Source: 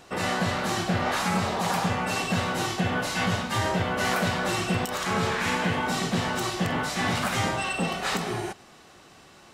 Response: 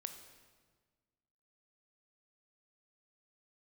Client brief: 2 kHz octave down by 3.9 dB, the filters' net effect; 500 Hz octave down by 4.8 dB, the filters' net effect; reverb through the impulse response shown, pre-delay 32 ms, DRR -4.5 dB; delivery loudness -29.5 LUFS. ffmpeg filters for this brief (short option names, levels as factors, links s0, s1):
-filter_complex "[0:a]equalizer=f=500:t=o:g=-6,equalizer=f=2000:t=o:g=-5,asplit=2[s0][s1];[1:a]atrim=start_sample=2205,adelay=32[s2];[s1][s2]afir=irnorm=-1:irlink=0,volume=2.37[s3];[s0][s3]amix=inputs=2:normalize=0,volume=0.473"